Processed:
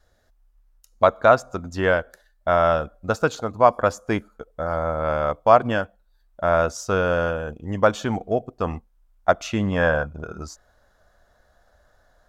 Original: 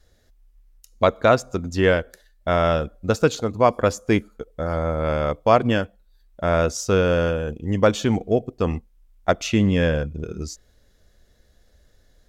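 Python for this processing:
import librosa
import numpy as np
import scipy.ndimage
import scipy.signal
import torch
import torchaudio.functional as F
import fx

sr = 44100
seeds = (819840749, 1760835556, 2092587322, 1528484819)

y = fx.band_shelf(x, sr, hz=980.0, db=fx.steps((0.0, 8.0), (9.71, 15.5)), octaves=1.7)
y = y * librosa.db_to_amplitude(-5.0)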